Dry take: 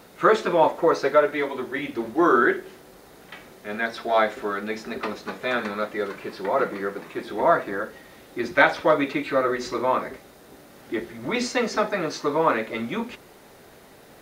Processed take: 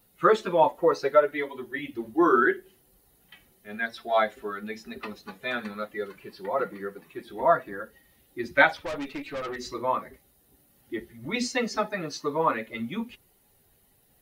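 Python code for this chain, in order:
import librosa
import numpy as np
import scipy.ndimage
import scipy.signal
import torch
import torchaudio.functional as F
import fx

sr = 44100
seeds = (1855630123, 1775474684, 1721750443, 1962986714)

y = fx.bin_expand(x, sr, power=1.5)
y = fx.tube_stage(y, sr, drive_db=30.0, bias=0.5, at=(8.77, 9.56))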